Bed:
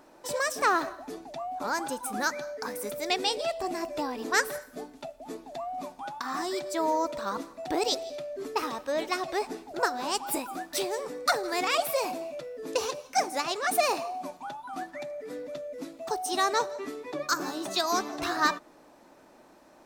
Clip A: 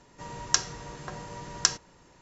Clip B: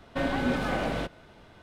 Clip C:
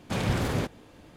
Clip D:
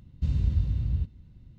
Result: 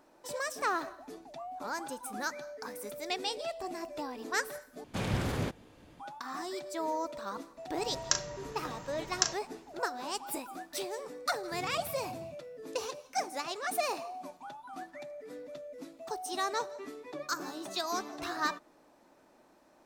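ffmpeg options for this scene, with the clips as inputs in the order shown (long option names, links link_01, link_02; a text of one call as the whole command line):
ffmpeg -i bed.wav -i cue0.wav -i cue1.wav -i cue2.wav -i cue3.wav -filter_complex "[0:a]volume=-7dB[link_01];[1:a]asplit=2[link_02][link_03];[link_03]adelay=37,volume=-8.5dB[link_04];[link_02][link_04]amix=inputs=2:normalize=0[link_05];[4:a]highpass=frequency=150:width=0.5412,highpass=frequency=150:width=1.3066[link_06];[link_01]asplit=2[link_07][link_08];[link_07]atrim=end=4.844[link_09];[3:a]atrim=end=1.16,asetpts=PTS-STARTPTS,volume=-5dB[link_10];[link_08]atrim=start=5.996[link_11];[link_05]atrim=end=2.21,asetpts=PTS-STARTPTS,volume=-5.5dB,afade=type=in:duration=0.004:curve=hsin,afade=type=out:start_time=2.206:duration=0.004:curve=hsin,adelay=7570[link_12];[link_06]atrim=end=1.58,asetpts=PTS-STARTPTS,volume=-11dB,afade=type=in:duration=0.004:curve=hsin,afade=type=out:start_time=1.576:duration=0.004:curve=hsin,adelay=11290[link_13];[link_09][link_10]acrossfade=duration=0.004:curve1=hsin:curve2=hsin[link_14];[link_14][link_11]acrossfade=duration=0.004:curve1=hsin:curve2=hsin[link_15];[link_15][link_12][link_13]amix=inputs=3:normalize=0" out.wav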